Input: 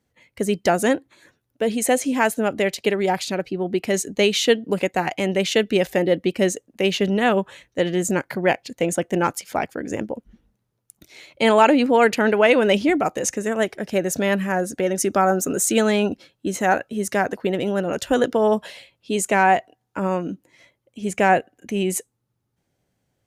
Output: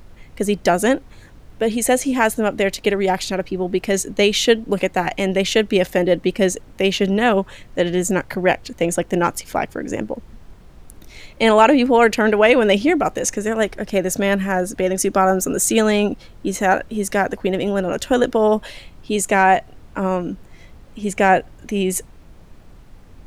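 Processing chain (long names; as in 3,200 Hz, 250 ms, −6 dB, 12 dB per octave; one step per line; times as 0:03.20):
background noise brown −43 dBFS
level +2.5 dB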